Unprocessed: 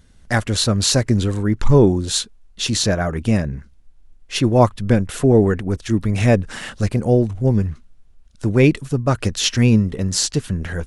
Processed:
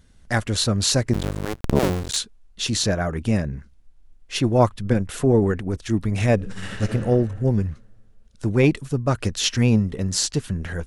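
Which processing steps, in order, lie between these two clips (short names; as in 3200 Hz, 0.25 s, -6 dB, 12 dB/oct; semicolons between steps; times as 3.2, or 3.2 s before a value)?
1.13–2.17 cycle switcher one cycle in 2, muted; 6.35–6.83 reverb throw, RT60 1.9 s, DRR -1.5 dB; core saturation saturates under 180 Hz; gain -3 dB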